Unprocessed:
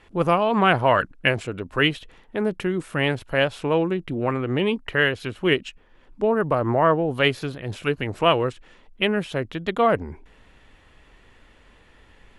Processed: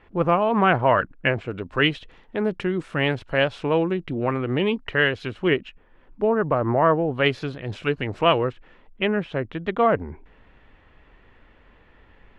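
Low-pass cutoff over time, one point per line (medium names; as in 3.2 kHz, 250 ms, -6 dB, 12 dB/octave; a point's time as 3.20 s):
2.3 kHz
from 1.51 s 5.1 kHz
from 5.48 s 2.4 kHz
from 7.26 s 5 kHz
from 8.38 s 2.5 kHz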